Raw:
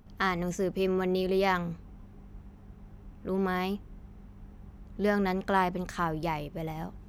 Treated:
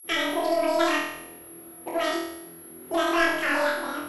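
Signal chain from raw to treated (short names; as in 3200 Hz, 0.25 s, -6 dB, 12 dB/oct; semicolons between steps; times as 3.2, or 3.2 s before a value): HPF 170 Hz 12 dB/oct; gate with hold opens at -48 dBFS; grains 0.1 s, grains 20/s, pitch spread up and down by 0 st; whine 6500 Hz -43 dBFS; soft clip -21.5 dBFS, distortion -16 dB; flange 2 Hz, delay 2.4 ms, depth 7.7 ms, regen -16%; air absorption 110 m; flutter echo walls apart 7.1 m, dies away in 1.3 s; speed mistake 45 rpm record played at 78 rpm; gain +7.5 dB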